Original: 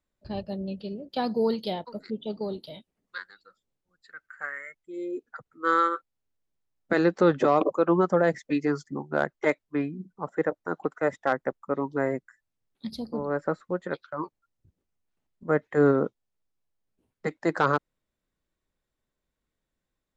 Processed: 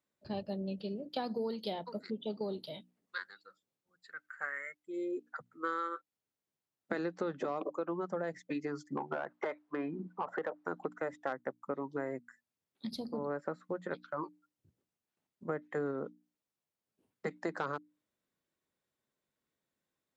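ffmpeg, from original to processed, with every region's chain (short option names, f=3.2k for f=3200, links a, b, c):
-filter_complex "[0:a]asettb=1/sr,asplit=3[a][b][c];[a]atrim=end=8.974[d];[b]atrim=start=8.97:end=10.65,asetpts=PTS-STARTPTS,afade=t=in:d=0.004:c=qsin,afade=t=out:st=1.676:d=0.004:c=qsin,equalizer=f=1k:w=0.64:g=9,acompressor=threshold=-28dB:ratio=5:attack=3.2:release=140:knee=1:detection=peak,asplit=2[e][f];[f]highpass=f=720:p=1,volume=17dB,asoftclip=type=tanh:threshold=-16dB[g];[e][g]amix=inputs=2:normalize=0,lowpass=f=1k:p=1,volume=-6dB[h];[c]atrim=start=10.646[i];[d][h]acrossfade=d=0.004:c1=hsin:c2=qsin[j];[j][i]acrossfade=d=0.004:c1=qsin:c2=hsin,acompressor=threshold=-31dB:ratio=6,highpass=130,bandreject=f=60:t=h:w=6,bandreject=f=120:t=h:w=6,bandreject=f=180:t=h:w=6,bandreject=f=240:t=h:w=6,bandreject=f=300:t=h:w=6,volume=-2dB"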